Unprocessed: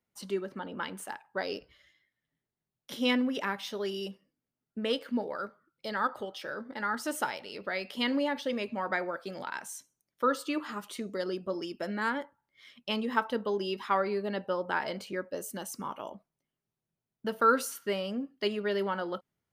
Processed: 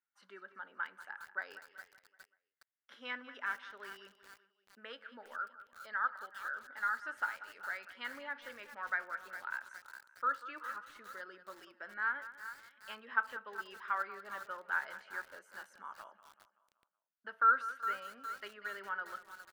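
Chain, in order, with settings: band-pass filter 1.5 kHz, Q 4.4; feedback delay 190 ms, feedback 51%, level -15 dB; bit-crushed delay 411 ms, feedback 55%, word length 8-bit, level -11 dB; trim +1 dB

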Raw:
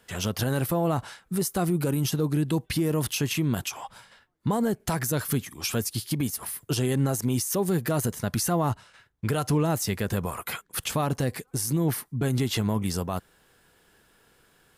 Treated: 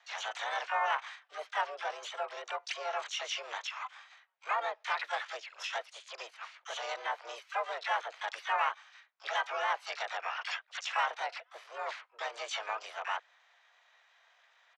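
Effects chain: mistuned SSB +220 Hz 520–3000 Hz; harmony voices -5 st -11 dB, +4 st -7 dB, +12 st -6 dB; trim -3 dB

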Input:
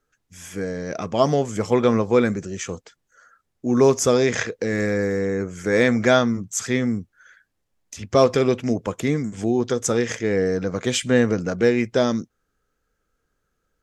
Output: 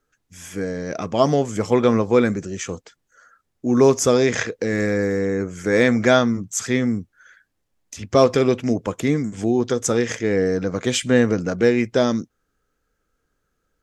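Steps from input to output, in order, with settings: peaking EQ 290 Hz +2.5 dB 0.32 oct; trim +1 dB

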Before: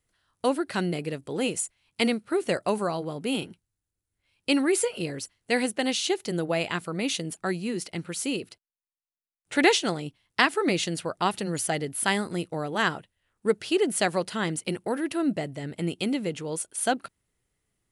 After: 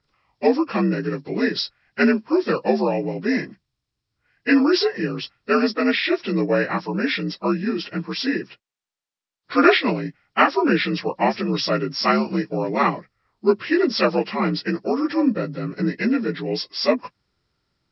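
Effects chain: frequency axis rescaled in octaves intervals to 82%; distance through air 71 m; trim +8.5 dB

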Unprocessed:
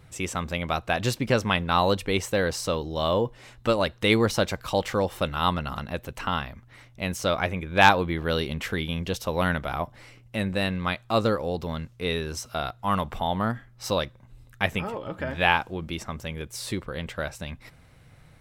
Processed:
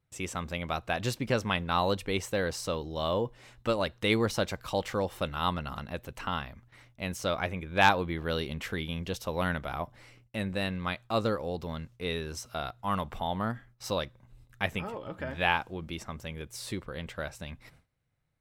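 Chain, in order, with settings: gate with hold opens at -41 dBFS; trim -5.5 dB

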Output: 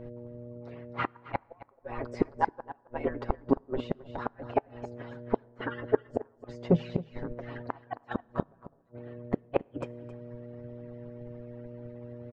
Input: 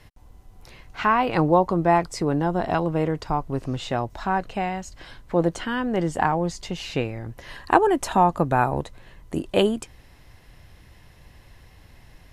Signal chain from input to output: harmonic-percussive separation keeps percussive; low-pass 1.3 kHz 12 dB/octave; hum notches 50/100/150/200/250 Hz; comb 7.3 ms, depth 73%; mains buzz 120 Hz, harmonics 5, -44 dBFS -1 dB/octave; inverted gate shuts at -19 dBFS, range -38 dB; delay 268 ms -11.5 dB; on a send at -18 dB: reverberation RT60 1.6 s, pre-delay 5 ms; on the sum: upward expansion 1.5:1, over -53 dBFS; trim +9 dB

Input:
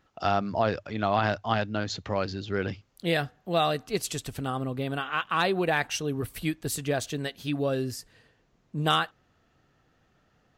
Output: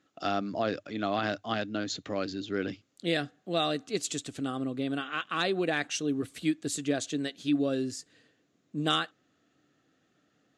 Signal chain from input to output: cabinet simulation 160–9500 Hz, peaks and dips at 290 Hz +9 dB, 920 Hz -10 dB, 3.7 kHz +4 dB, 7 kHz +7 dB; trim -3.5 dB

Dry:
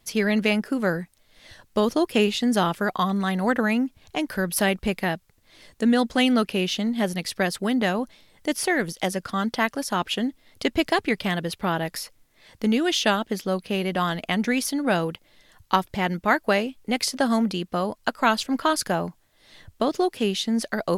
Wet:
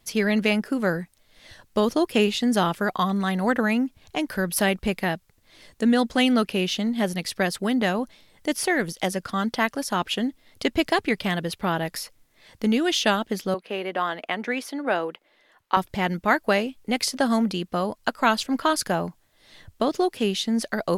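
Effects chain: 13.54–15.77 s: three-band isolator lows -24 dB, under 280 Hz, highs -12 dB, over 3 kHz

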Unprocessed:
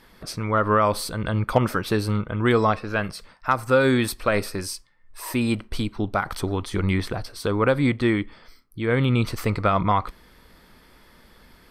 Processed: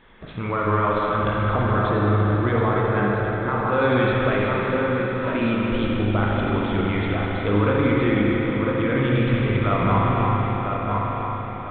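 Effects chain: backward echo that repeats 240 ms, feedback 68%, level -13 dB; 1.49–3.70 s: peaking EQ 2.8 kHz -11.5 dB 0.46 oct; feedback echo behind a low-pass 1000 ms, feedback 36%, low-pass 2 kHz, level -9 dB; peak limiter -15.5 dBFS, peak gain reduction 9.5 dB; spring tank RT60 3.7 s, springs 39/59 ms, chirp 60 ms, DRR -4 dB; µ-law 64 kbps 8 kHz

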